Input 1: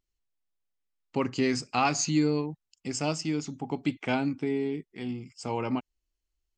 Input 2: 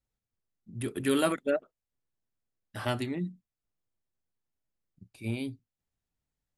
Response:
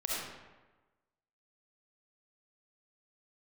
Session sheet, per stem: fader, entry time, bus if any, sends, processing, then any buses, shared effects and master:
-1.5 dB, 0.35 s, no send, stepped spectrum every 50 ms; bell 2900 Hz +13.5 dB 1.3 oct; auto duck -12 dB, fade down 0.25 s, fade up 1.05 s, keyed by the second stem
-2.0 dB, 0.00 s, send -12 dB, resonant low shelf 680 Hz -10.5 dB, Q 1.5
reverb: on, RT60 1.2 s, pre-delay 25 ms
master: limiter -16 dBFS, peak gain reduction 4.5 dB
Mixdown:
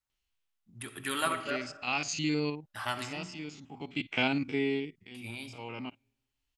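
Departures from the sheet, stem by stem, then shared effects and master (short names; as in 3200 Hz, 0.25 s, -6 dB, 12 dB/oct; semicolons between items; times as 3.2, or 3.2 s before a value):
stem 1: entry 0.35 s -> 0.10 s; master: missing limiter -16 dBFS, peak gain reduction 4.5 dB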